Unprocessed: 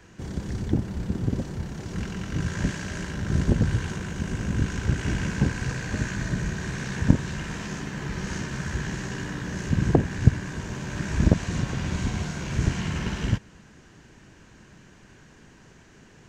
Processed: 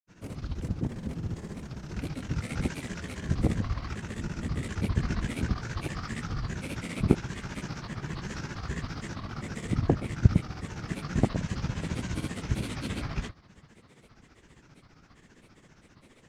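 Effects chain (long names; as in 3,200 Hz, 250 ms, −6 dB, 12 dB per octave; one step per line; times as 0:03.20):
granular cloud, grains 15 per second, pitch spread up and down by 7 semitones
level −2.5 dB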